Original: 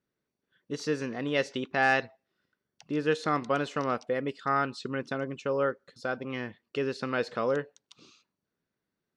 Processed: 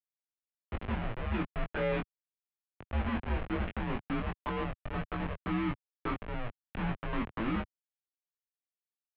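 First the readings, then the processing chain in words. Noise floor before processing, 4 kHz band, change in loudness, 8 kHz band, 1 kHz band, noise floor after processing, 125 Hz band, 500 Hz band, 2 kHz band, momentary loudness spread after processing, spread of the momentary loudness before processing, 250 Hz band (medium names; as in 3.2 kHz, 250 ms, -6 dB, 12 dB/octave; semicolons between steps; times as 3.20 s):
under -85 dBFS, -8.0 dB, -5.5 dB, under -30 dB, -7.5 dB, under -85 dBFS, +3.0 dB, -9.5 dB, -8.5 dB, 7 LU, 9 LU, -1.5 dB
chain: touch-sensitive phaser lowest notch 160 Hz, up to 1.5 kHz, full sweep at -25 dBFS; Schmitt trigger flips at -34.5 dBFS; doubling 20 ms -3.5 dB; mistuned SSB -230 Hz 170–3100 Hz; trim +3 dB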